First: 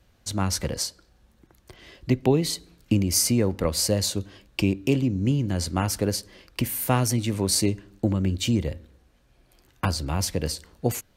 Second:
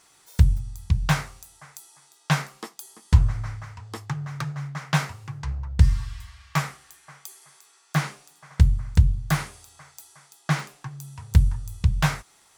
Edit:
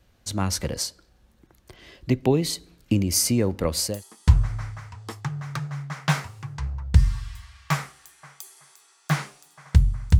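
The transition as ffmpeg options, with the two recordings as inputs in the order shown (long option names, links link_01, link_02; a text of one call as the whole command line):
ffmpeg -i cue0.wav -i cue1.wav -filter_complex "[0:a]apad=whole_dur=10.19,atrim=end=10.19,atrim=end=4.04,asetpts=PTS-STARTPTS[link_01];[1:a]atrim=start=2.63:end=9.04,asetpts=PTS-STARTPTS[link_02];[link_01][link_02]acrossfade=duration=0.26:curve1=tri:curve2=tri" out.wav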